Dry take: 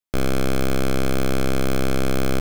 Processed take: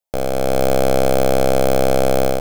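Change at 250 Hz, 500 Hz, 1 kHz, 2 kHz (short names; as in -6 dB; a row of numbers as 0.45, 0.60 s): +0.5, +10.5, +10.0, +1.0 dB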